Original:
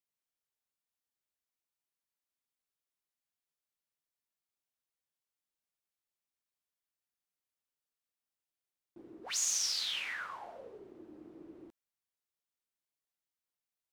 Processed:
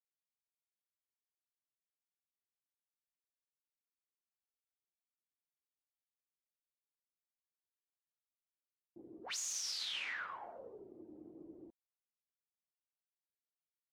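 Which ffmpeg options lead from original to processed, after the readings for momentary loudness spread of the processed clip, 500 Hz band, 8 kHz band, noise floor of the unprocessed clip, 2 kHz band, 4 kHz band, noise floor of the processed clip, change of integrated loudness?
18 LU, −2.0 dB, −8.0 dB, below −85 dBFS, −2.5 dB, −5.5 dB, below −85 dBFS, −7.0 dB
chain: -af "afftdn=noise_reduction=19:noise_floor=-62,alimiter=level_in=5.5dB:limit=-24dB:level=0:latency=1:release=56,volume=-5.5dB,volume=-2dB"

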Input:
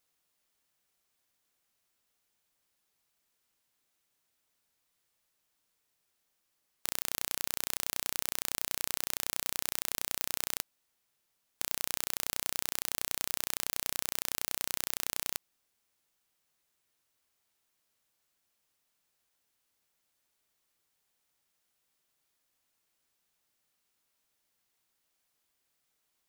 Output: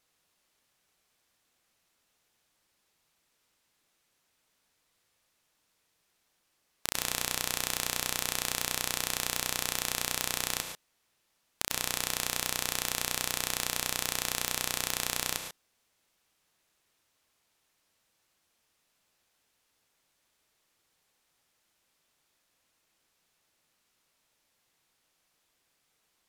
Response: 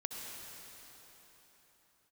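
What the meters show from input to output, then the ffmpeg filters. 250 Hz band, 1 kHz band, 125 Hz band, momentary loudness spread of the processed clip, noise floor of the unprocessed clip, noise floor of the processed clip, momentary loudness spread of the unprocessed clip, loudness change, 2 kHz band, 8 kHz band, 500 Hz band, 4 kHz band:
+6.5 dB, +7.0 dB, +8.5 dB, 4 LU, −79 dBFS, −76 dBFS, 3 LU, +3.0 dB, +6.5 dB, +4.5 dB, +6.5 dB, +6.0 dB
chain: -filter_complex "[0:a]highshelf=frequency=10000:gain=-9[link_01];[1:a]atrim=start_sample=2205,atrim=end_sample=4410,asetrate=29547,aresample=44100[link_02];[link_01][link_02]afir=irnorm=-1:irlink=0,volume=7.5dB"

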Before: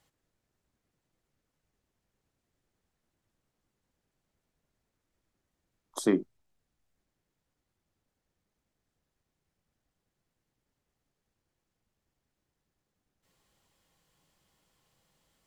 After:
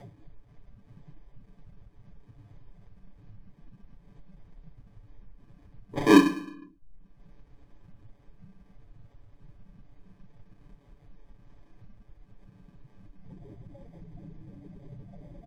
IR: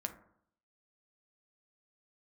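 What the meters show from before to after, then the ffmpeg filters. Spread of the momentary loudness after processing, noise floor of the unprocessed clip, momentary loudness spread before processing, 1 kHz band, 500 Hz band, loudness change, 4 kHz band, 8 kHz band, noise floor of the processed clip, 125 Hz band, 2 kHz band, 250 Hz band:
20 LU, −85 dBFS, 9 LU, +17.0 dB, +7.0 dB, +7.0 dB, +11.5 dB, +2.0 dB, −60 dBFS, +10.0 dB, +15.0 dB, +10.0 dB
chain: -filter_complex "[0:a]asplit=2[link_01][link_02];[link_02]tiltshelf=frequency=970:gain=5.5[link_03];[1:a]atrim=start_sample=2205,adelay=31[link_04];[link_03][link_04]afir=irnorm=-1:irlink=0,volume=1dB[link_05];[link_01][link_05]amix=inputs=2:normalize=0,acrusher=samples=32:mix=1:aa=0.000001,afftdn=noise_reduction=20:noise_floor=-60,aemphasis=mode=reproduction:type=50kf,acompressor=mode=upward:threshold=-26dB:ratio=2.5,aecho=1:1:7:0.78" -ar 44100 -c:a wmav2 -b:a 128k

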